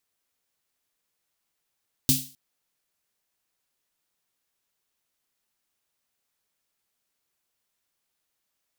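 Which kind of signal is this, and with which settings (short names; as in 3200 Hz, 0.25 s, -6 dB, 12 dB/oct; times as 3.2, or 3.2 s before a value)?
snare drum length 0.26 s, tones 140 Hz, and 260 Hz, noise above 3200 Hz, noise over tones 3 dB, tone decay 0.31 s, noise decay 0.38 s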